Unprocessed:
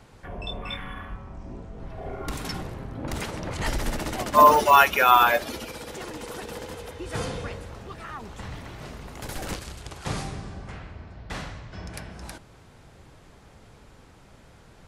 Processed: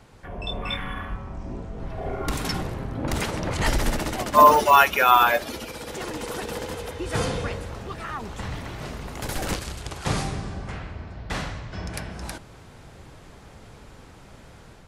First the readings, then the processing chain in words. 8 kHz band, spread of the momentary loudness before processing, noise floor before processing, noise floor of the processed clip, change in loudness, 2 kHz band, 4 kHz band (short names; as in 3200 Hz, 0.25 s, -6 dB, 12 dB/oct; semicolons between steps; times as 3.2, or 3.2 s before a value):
+3.5 dB, 24 LU, -52 dBFS, -47 dBFS, -0.5 dB, +1.0 dB, +2.0 dB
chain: AGC gain up to 5 dB